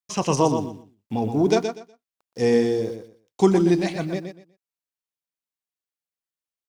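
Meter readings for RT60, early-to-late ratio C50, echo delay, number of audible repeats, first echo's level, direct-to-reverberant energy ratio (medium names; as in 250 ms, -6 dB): no reverb, no reverb, 122 ms, 3, -7.5 dB, no reverb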